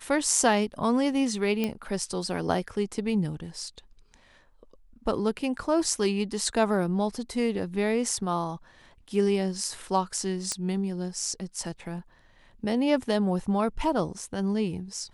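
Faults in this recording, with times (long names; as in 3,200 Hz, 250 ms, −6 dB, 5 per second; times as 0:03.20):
0:01.64: click −14 dBFS
0:10.52: click −14 dBFS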